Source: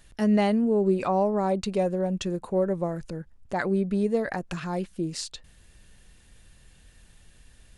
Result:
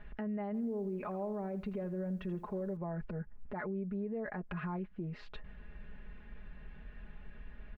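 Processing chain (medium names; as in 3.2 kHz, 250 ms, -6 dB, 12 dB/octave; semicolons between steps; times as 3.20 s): low-pass 2.2 kHz 24 dB/octave; comb 4.8 ms, depth 75%; compression 2.5:1, threshold -42 dBFS, peak gain reduction 18.5 dB; peak limiter -34 dBFS, peak gain reduction 8 dB; 0.46–2.77 s: bit-crushed delay 82 ms, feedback 35%, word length 11-bit, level -15 dB; trim +3 dB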